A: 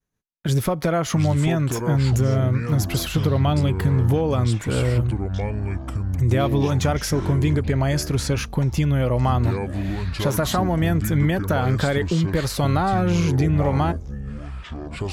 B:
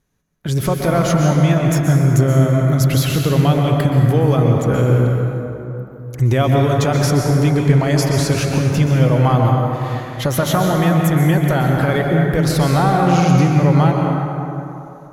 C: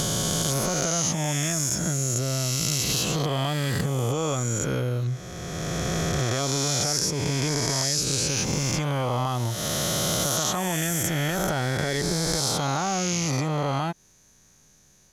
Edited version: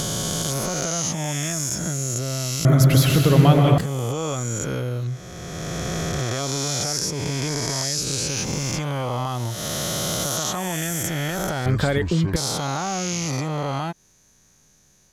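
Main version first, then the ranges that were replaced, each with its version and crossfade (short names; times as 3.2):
C
2.65–3.78 from B
11.66–12.36 from A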